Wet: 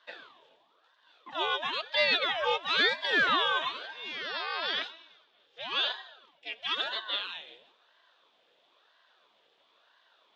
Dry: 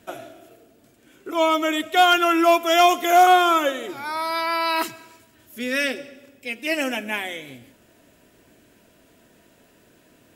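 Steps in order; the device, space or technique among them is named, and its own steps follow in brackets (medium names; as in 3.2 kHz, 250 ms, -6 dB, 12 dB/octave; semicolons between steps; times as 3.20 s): 4.73–5.92 s: low-pass 5.4 kHz 12 dB/octave; voice changer toy (ring modulator with a swept carrier 760 Hz, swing 75%, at 1 Hz; cabinet simulation 590–4400 Hz, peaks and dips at 820 Hz -7 dB, 1.3 kHz -3 dB, 2.1 kHz -6 dB, 3.5 kHz +10 dB); trim -4.5 dB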